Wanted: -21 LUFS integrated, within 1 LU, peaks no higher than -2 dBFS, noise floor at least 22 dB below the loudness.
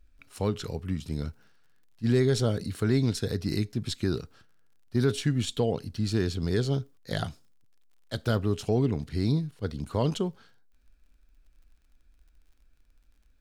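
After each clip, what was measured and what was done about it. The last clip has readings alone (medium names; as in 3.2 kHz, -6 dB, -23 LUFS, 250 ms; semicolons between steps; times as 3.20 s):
tick rate 26 per s; loudness -29.0 LUFS; peak level -14.0 dBFS; loudness target -21.0 LUFS
-> de-click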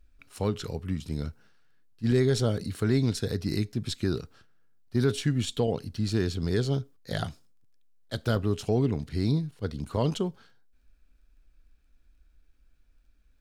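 tick rate 0.15 per s; loudness -29.0 LUFS; peak level -14.0 dBFS; loudness target -21.0 LUFS
-> trim +8 dB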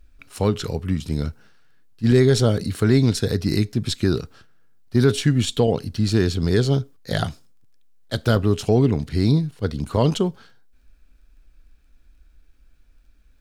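loudness -21.0 LUFS; peak level -6.0 dBFS; noise floor -55 dBFS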